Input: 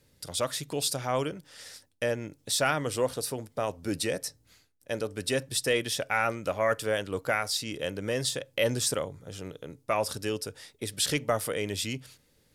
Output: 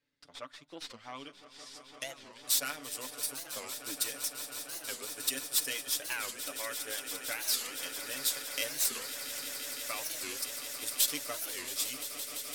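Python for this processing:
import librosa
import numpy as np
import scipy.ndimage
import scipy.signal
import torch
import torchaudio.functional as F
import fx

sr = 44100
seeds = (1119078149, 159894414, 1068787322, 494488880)

y = fx.tracing_dist(x, sr, depth_ms=0.089)
y = fx.transient(y, sr, attack_db=4, sustain_db=-6)
y = fx.peak_eq(y, sr, hz=270.0, db=13.0, octaves=0.35)
y = fx.filter_sweep_lowpass(y, sr, from_hz=2000.0, to_hz=14000.0, start_s=0.69, end_s=2.51, q=0.84)
y = scipy.signal.lfilter([1.0, -0.97], [1.0], y)
y = y + 0.53 * np.pad(y, (int(6.9 * sr / 1000.0), 0))[:len(y)]
y = fx.echo_swell(y, sr, ms=170, loudest=8, wet_db=-14.0)
y = fx.record_warp(y, sr, rpm=45.0, depth_cents=250.0)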